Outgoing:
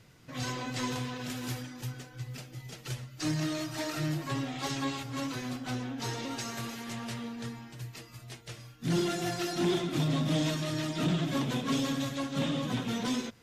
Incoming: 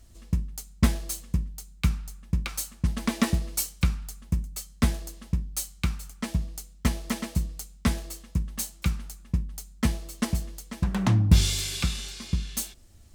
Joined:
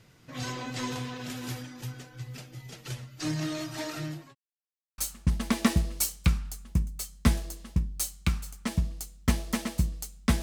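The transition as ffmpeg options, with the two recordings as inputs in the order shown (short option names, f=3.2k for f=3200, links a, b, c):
-filter_complex "[0:a]apad=whole_dur=10.42,atrim=end=10.42,asplit=2[a][b];[a]atrim=end=4.35,asetpts=PTS-STARTPTS,afade=t=out:st=3.71:d=0.64:c=qsin[c];[b]atrim=start=4.35:end=4.98,asetpts=PTS-STARTPTS,volume=0[d];[1:a]atrim=start=2.55:end=7.99,asetpts=PTS-STARTPTS,afade=t=in:d=0.004:c=hsin[e];[c][d][e]concat=n=3:v=0:a=1"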